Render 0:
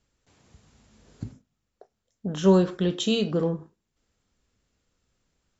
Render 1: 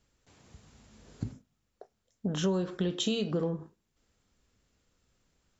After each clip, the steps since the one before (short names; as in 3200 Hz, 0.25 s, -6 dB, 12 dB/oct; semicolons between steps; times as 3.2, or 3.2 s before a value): compressor 5:1, threshold -28 dBFS, peak gain reduction 14 dB; gain +1 dB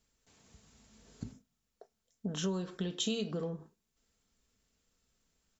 high shelf 4100 Hz +8 dB; comb 4.5 ms, depth 32%; gain -6.5 dB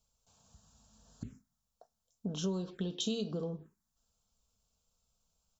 envelope phaser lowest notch 320 Hz, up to 2000 Hz, full sweep at -34 dBFS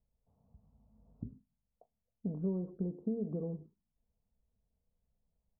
Gaussian blur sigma 12 samples; gain +1 dB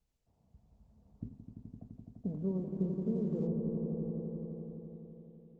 swelling echo 85 ms, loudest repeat 5, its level -8 dB; Opus 16 kbps 48000 Hz